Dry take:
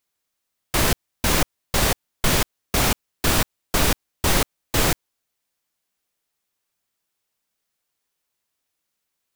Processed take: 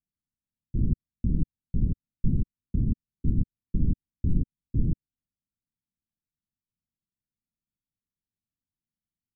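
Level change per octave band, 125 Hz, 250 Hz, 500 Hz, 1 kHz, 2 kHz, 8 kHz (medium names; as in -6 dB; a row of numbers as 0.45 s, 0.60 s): 0.0 dB, -3.5 dB, -22.0 dB, under -40 dB, under -40 dB, under -40 dB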